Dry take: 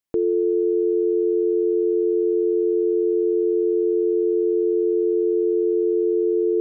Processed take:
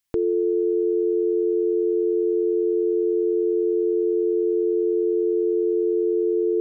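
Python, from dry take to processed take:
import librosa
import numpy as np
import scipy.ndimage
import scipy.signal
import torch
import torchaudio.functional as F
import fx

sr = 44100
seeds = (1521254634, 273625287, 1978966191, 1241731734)

y = fx.peak_eq(x, sr, hz=390.0, db=-10.0, octaves=2.8)
y = y * 10.0 ** (8.5 / 20.0)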